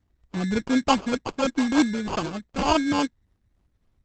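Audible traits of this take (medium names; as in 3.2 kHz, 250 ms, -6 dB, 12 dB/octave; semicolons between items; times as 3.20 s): phasing stages 4, 3.4 Hz, lowest notch 670–2600 Hz; aliases and images of a low sample rate 1.9 kHz, jitter 0%; Opus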